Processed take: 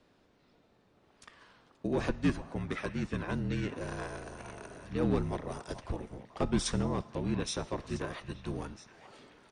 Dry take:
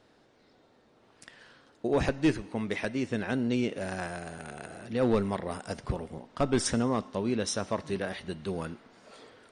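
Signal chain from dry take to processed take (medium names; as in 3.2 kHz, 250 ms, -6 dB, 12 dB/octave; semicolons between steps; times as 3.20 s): harmony voices -7 st -2 dB; frequency shift -37 Hz; repeats whose band climbs or falls 434 ms, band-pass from 860 Hz, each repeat 1.4 oct, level -10 dB; trim -6 dB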